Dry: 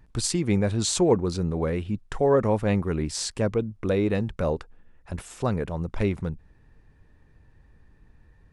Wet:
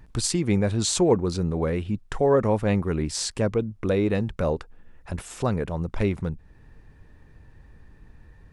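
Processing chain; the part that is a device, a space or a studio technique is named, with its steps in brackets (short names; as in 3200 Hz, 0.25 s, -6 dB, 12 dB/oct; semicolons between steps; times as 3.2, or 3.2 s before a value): parallel compression (in parallel at -0.5 dB: compressor, threshold -42 dBFS, peak gain reduction 24.5 dB)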